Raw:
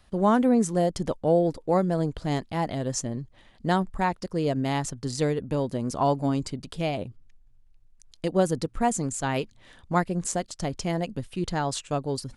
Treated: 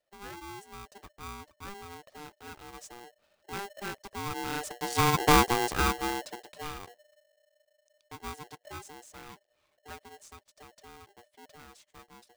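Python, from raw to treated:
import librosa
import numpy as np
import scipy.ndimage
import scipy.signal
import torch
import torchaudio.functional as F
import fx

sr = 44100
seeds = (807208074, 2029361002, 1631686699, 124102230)

y = fx.doppler_pass(x, sr, speed_mps=15, closest_m=2.4, pass_at_s=5.32)
y = y * np.sign(np.sin(2.0 * np.pi * 600.0 * np.arange(len(y)) / sr))
y = y * 10.0 ** (6.5 / 20.0)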